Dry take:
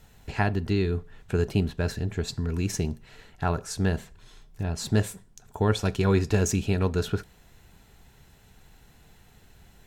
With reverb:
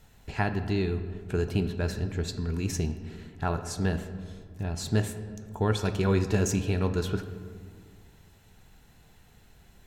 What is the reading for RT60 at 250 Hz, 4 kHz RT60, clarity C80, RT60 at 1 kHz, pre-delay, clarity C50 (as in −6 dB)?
2.4 s, 1.0 s, 11.5 dB, 1.8 s, 16 ms, 10.5 dB